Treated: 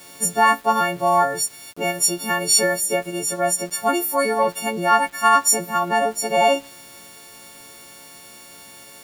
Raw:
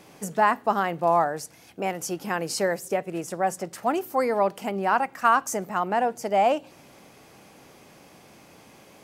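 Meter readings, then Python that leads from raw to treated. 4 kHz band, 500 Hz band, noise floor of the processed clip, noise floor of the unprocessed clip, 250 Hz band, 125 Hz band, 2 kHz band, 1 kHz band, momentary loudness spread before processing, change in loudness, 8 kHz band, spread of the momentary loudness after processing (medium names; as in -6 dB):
+13.5 dB, +3.5 dB, -44 dBFS, -52 dBFS, +3.0 dB, +3.0 dB, +7.5 dB, +4.5 dB, 9 LU, +6.0 dB, +15.5 dB, 7 LU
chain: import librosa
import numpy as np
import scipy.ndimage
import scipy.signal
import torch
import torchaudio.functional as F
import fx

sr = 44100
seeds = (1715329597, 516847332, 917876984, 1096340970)

y = fx.freq_snap(x, sr, grid_st=4)
y = np.where(np.abs(y) >= 10.0 ** (-43.5 / 20.0), y, 0.0)
y = y * 10.0 ** (3.0 / 20.0)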